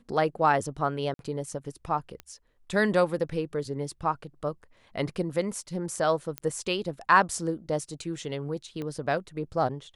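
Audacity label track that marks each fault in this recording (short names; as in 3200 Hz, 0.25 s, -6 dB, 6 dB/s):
1.140000	1.190000	gap 52 ms
2.200000	2.200000	pop -24 dBFS
6.380000	6.380000	pop -16 dBFS
8.820000	8.820000	pop -23 dBFS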